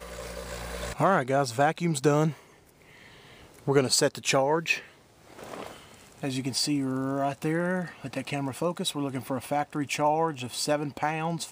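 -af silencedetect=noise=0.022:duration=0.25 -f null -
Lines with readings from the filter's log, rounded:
silence_start: 2.32
silence_end: 3.67 | silence_duration: 1.35
silence_start: 4.79
silence_end: 5.39 | silence_duration: 0.60
silence_start: 5.67
silence_end: 6.23 | silence_duration: 0.56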